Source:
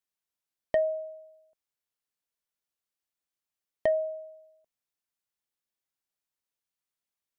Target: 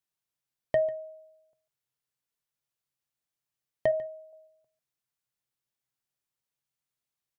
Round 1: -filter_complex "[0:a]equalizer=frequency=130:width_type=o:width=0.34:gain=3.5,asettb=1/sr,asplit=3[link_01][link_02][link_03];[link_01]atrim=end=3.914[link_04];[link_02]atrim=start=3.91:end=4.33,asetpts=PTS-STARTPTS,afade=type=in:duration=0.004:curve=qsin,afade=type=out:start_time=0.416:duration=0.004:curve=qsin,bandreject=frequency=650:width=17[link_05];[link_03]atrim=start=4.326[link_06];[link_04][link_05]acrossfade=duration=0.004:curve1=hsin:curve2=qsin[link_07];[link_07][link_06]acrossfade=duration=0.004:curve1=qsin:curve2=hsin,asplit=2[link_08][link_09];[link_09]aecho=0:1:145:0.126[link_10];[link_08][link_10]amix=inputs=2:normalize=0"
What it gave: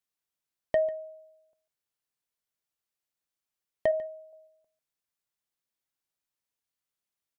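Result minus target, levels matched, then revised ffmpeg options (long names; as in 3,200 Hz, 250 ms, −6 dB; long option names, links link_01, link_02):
125 Hz band −6.5 dB
-filter_complex "[0:a]equalizer=frequency=130:width_type=o:width=0.34:gain=14.5,asettb=1/sr,asplit=3[link_01][link_02][link_03];[link_01]atrim=end=3.914[link_04];[link_02]atrim=start=3.91:end=4.33,asetpts=PTS-STARTPTS,afade=type=in:duration=0.004:curve=qsin,afade=type=out:start_time=0.416:duration=0.004:curve=qsin,bandreject=frequency=650:width=17[link_05];[link_03]atrim=start=4.326[link_06];[link_04][link_05]acrossfade=duration=0.004:curve1=hsin:curve2=qsin[link_07];[link_07][link_06]acrossfade=duration=0.004:curve1=qsin:curve2=hsin,asplit=2[link_08][link_09];[link_09]aecho=0:1:145:0.126[link_10];[link_08][link_10]amix=inputs=2:normalize=0"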